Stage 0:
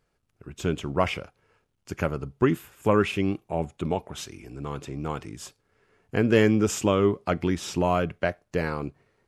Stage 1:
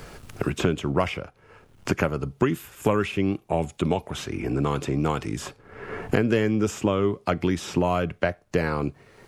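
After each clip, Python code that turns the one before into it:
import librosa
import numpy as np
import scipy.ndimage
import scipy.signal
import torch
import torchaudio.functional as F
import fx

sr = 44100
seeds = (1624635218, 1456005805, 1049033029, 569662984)

y = fx.band_squash(x, sr, depth_pct=100)
y = F.gain(torch.from_numpy(y), 1.0).numpy()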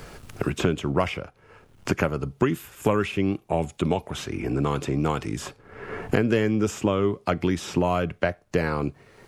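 y = x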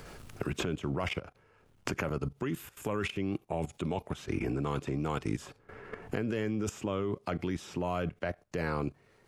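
y = fx.level_steps(x, sr, step_db=16)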